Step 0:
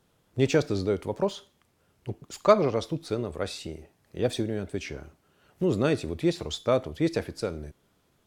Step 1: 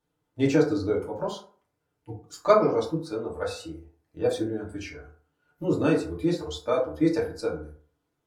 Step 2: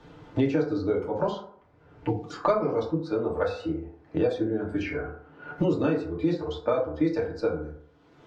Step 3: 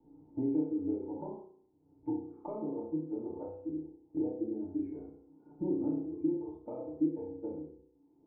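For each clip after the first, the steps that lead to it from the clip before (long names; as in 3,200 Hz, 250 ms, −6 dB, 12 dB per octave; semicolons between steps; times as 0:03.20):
noise reduction from a noise print of the clip's start 12 dB; in parallel at −3 dB: output level in coarse steps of 14 dB; on the sum: feedback delay network reverb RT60 0.47 s, low-frequency decay 0.85×, high-frequency decay 0.4×, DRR −4.5 dB; level −8 dB
high-frequency loss of the air 180 metres; multiband upward and downward compressor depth 100%
formant resonators in series u; flutter between parallel walls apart 5.5 metres, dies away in 0.56 s; dynamic equaliser 810 Hz, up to +4 dB, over −49 dBFS, Q 1.4; level −5 dB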